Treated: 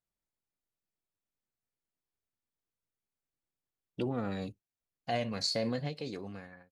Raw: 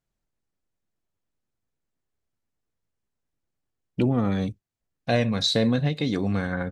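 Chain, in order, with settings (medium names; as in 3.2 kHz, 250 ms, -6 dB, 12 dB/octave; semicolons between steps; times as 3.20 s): fade out at the end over 0.89 s; bass shelf 240 Hz -6 dB; formant shift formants +2 st; trim -8.5 dB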